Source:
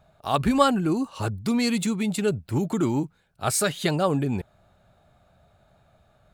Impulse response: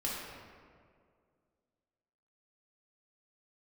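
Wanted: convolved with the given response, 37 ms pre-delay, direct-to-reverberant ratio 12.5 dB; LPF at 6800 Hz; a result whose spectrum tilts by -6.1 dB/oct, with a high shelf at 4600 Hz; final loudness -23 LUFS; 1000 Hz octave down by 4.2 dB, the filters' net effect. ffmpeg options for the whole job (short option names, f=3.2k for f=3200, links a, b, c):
-filter_complex "[0:a]lowpass=6.8k,equalizer=f=1k:t=o:g=-5,highshelf=f=4.6k:g=-7.5,asplit=2[a][b];[1:a]atrim=start_sample=2205,adelay=37[c];[b][c]afir=irnorm=-1:irlink=0,volume=-17dB[d];[a][d]amix=inputs=2:normalize=0,volume=3dB"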